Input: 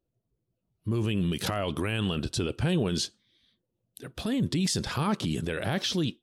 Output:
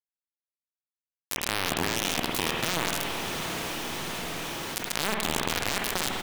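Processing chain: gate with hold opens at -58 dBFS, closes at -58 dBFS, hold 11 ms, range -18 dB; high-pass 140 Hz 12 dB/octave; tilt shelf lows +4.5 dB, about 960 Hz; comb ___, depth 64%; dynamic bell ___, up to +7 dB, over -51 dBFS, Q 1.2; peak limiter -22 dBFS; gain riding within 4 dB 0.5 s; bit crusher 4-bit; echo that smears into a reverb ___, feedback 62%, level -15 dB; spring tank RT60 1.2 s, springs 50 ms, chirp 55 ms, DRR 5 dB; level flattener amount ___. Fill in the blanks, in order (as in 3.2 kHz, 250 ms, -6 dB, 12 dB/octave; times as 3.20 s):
4.2 ms, 2.7 kHz, 703 ms, 70%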